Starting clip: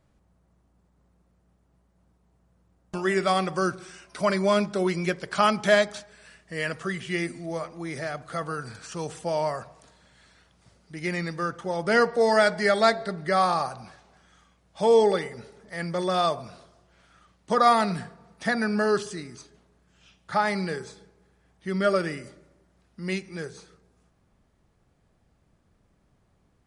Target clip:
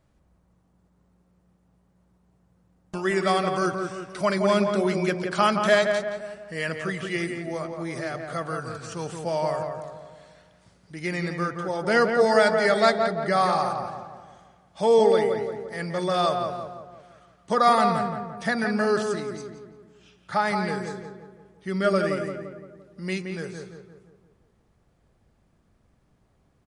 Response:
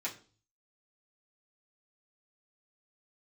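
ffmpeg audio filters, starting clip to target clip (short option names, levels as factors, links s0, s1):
-filter_complex "[0:a]asplit=2[s0][s1];[s1]adelay=172,lowpass=f=1900:p=1,volume=0.596,asplit=2[s2][s3];[s3]adelay=172,lowpass=f=1900:p=1,volume=0.51,asplit=2[s4][s5];[s5]adelay=172,lowpass=f=1900:p=1,volume=0.51,asplit=2[s6][s7];[s7]adelay=172,lowpass=f=1900:p=1,volume=0.51,asplit=2[s8][s9];[s9]adelay=172,lowpass=f=1900:p=1,volume=0.51,asplit=2[s10][s11];[s11]adelay=172,lowpass=f=1900:p=1,volume=0.51,asplit=2[s12][s13];[s13]adelay=172,lowpass=f=1900:p=1,volume=0.51[s14];[s0][s2][s4][s6][s8][s10][s12][s14]amix=inputs=8:normalize=0"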